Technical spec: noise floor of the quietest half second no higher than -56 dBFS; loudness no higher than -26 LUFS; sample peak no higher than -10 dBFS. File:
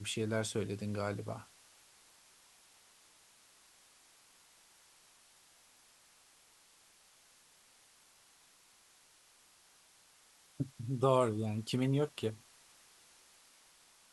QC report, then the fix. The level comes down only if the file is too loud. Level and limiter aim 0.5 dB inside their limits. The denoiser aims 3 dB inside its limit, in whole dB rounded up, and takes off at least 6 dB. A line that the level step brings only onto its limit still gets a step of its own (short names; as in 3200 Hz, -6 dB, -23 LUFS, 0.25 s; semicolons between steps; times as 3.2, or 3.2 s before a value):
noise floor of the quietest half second -65 dBFS: OK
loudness -35.5 LUFS: OK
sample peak -16.0 dBFS: OK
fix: none